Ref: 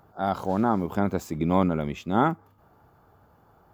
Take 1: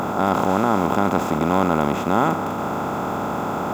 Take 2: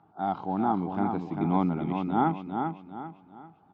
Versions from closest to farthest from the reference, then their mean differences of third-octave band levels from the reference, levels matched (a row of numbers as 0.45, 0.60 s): 2, 1; 6.5, 13.5 dB